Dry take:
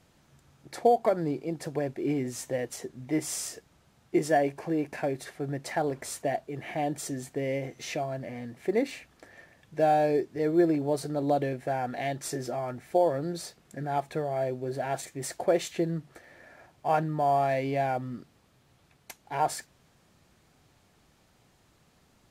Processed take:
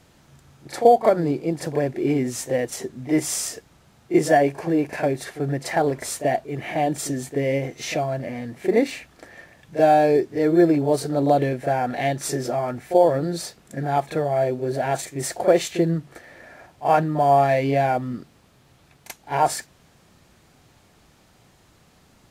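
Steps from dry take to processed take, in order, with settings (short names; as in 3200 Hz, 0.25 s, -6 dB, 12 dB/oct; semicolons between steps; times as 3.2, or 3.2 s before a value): reverse echo 36 ms -11.5 dB; gain +7.5 dB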